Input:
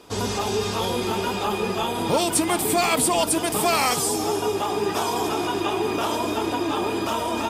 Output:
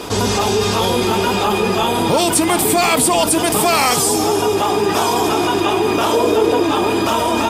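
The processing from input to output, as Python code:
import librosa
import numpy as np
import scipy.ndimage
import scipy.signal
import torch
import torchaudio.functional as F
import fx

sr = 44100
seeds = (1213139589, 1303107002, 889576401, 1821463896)

y = fx.peak_eq(x, sr, hz=460.0, db=14.0, octaves=0.37, at=(6.13, 6.63))
y = fx.env_flatten(y, sr, amount_pct=50)
y = y * librosa.db_to_amplitude(4.5)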